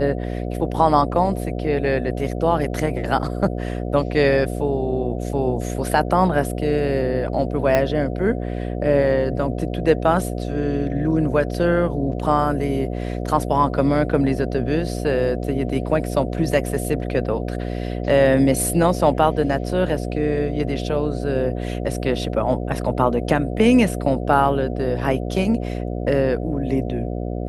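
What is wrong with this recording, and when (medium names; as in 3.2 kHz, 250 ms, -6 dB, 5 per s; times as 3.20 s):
buzz 60 Hz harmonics 12 -26 dBFS
7.75 s: pop -5 dBFS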